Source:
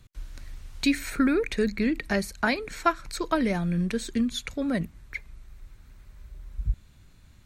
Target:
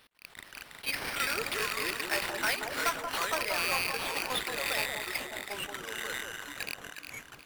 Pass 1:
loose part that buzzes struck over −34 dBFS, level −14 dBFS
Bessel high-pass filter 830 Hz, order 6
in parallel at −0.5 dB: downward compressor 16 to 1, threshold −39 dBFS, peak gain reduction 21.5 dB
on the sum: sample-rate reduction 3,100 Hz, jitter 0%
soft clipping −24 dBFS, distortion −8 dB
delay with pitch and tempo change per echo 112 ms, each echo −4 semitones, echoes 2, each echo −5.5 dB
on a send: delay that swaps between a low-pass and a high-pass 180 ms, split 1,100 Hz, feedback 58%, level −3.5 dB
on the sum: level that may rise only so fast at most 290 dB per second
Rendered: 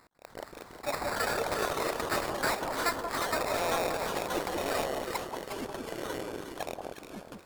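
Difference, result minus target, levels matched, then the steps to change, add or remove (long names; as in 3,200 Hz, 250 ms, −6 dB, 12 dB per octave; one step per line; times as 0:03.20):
sample-rate reduction: distortion +21 dB; downward compressor: peak gain reduction −8 dB
change: downward compressor 16 to 1, threshold −47.5 dBFS, peak gain reduction 29 dB
change: sample-rate reduction 7,100 Hz, jitter 0%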